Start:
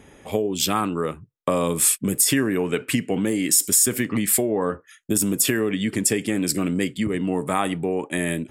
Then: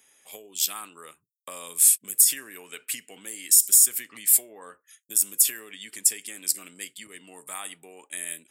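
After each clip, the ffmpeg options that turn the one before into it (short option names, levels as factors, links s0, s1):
-af "aderivative"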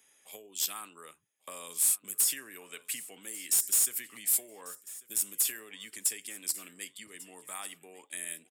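-filter_complex "[0:a]acrossover=split=150[s0][s1];[s1]asoftclip=type=tanh:threshold=0.158[s2];[s0][s2]amix=inputs=2:normalize=0,aecho=1:1:1144|2288:0.106|0.0191,volume=0.596"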